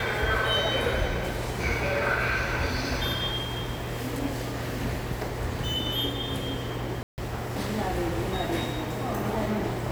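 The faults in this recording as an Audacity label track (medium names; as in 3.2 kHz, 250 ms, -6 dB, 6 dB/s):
7.030000	7.180000	dropout 149 ms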